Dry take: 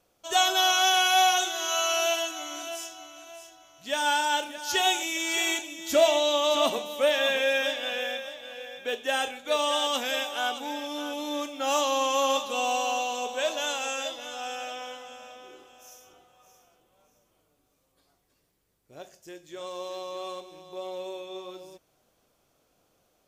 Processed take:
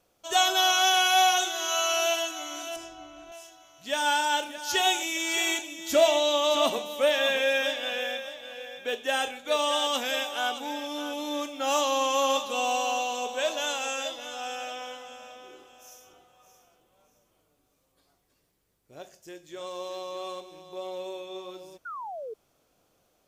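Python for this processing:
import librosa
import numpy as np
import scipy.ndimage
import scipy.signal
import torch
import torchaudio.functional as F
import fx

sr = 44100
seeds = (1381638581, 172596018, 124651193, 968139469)

y = fx.riaa(x, sr, side='playback', at=(2.76, 3.32))
y = fx.spec_paint(y, sr, seeds[0], shape='fall', start_s=21.85, length_s=0.49, low_hz=420.0, high_hz=1500.0, level_db=-37.0)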